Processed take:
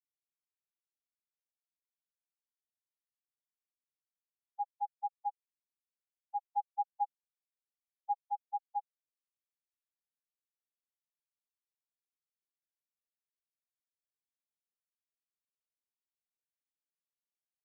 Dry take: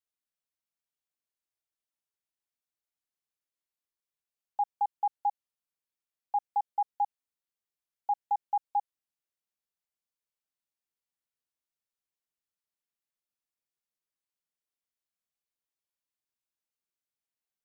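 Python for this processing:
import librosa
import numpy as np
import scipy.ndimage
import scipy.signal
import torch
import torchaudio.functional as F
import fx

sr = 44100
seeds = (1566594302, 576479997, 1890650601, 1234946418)

y = fx.tilt_eq(x, sr, slope=-2.5, at=(6.53, 8.27))
y = fx.spectral_expand(y, sr, expansion=4.0)
y = y * librosa.db_to_amplitude(-3.5)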